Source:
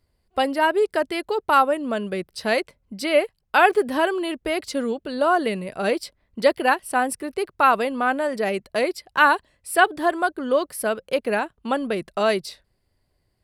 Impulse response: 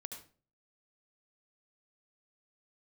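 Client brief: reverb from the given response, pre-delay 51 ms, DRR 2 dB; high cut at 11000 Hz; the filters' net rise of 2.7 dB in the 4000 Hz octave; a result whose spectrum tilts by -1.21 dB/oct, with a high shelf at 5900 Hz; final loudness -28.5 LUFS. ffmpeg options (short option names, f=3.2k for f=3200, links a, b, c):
-filter_complex "[0:a]lowpass=11k,equalizer=f=4k:t=o:g=5.5,highshelf=f=5.9k:g=-5,asplit=2[a][b];[1:a]atrim=start_sample=2205,adelay=51[c];[b][c]afir=irnorm=-1:irlink=0,volume=1.5dB[d];[a][d]amix=inputs=2:normalize=0,volume=-8.5dB"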